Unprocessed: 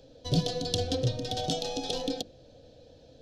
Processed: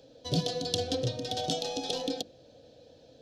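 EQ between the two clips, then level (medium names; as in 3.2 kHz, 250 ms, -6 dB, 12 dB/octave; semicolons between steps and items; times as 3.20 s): high-pass 170 Hz 6 dB/octave; 0.0 dB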